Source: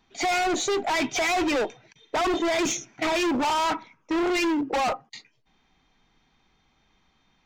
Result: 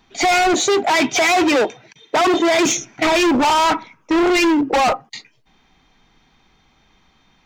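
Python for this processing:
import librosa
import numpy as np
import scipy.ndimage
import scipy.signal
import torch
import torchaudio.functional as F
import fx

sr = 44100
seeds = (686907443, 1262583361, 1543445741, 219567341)

y = fx.highpass(x, sr, hz=110.0, slope=12, at=(0.53, 2.77))
y = y * 10.0 ** (9.0 / 20.0)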